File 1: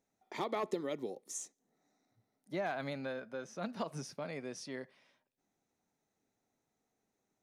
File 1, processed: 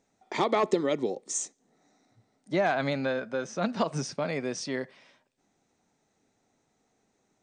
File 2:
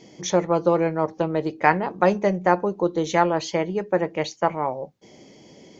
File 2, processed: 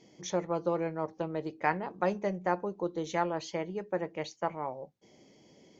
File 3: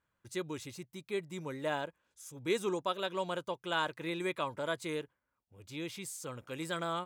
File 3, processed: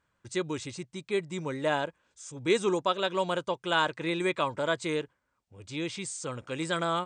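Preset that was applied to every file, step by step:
brick-wall FIR low-pass 9100 Hz; normalise peaks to -12 dBFS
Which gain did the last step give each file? +11.0, -11.0, +6.5 dB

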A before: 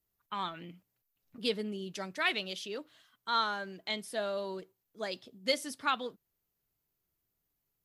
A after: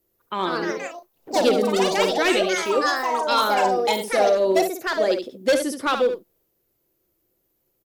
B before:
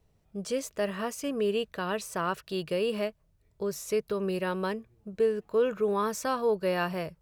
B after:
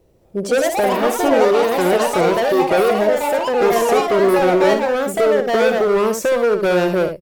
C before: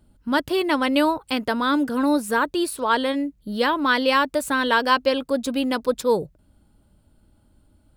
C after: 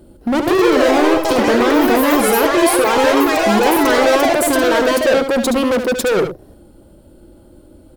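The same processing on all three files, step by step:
high shelf 12000 Hz +7 dB; in parallel at +2 dB: negative-ratio compressor -26 dBFS; on the sum: small resonant body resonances 360/510 Hz, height 16 dB, ringing for 40 ms; overloaded stage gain 14 dB; on a send: echo 72 ms -8 dB; on the sum: echoes that change speed 0.212 s, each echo +4 st, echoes 3; Opus 256 kbps 48000 Hz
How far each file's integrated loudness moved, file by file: +14.0, +14.5, +8.0 LU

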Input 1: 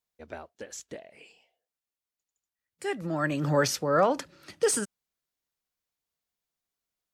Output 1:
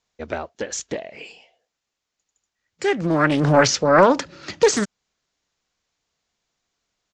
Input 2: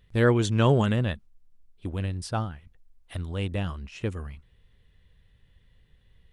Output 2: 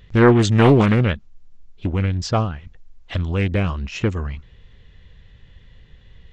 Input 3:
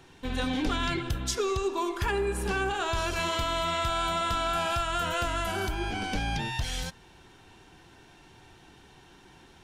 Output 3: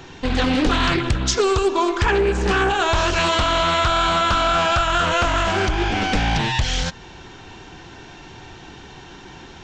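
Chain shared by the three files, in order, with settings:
in parallel at 0 dB: compressor, threshold -36 dBFS; on the sum: downsampling 16000 Hz; Doppler distortion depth 0.53 ms; match loudness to -19 LUFS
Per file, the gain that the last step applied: +8.0, +7.0, +8.0 dB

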